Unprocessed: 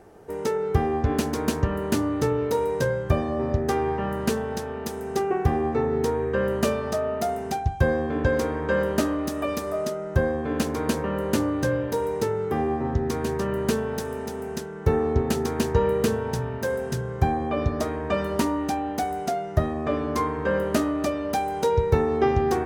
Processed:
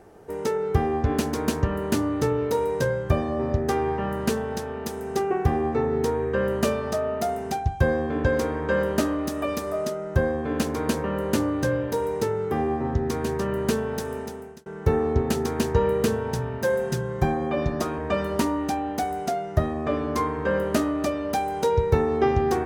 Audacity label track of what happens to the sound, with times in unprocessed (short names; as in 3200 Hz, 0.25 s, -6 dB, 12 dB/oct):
14.170000	14.660000	fade out
16.630000	17.980000	comb 5.6 ms